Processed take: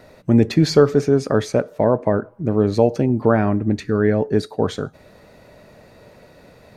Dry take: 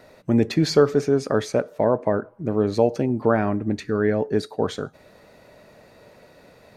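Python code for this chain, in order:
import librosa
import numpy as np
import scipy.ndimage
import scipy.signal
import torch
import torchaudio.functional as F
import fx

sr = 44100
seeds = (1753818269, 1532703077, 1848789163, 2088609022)

y = fx.low_shelf(x, sr, hz=190.0, db=6.5)
y = F.gain(torch.from_numpy(y), 2.0).numpy()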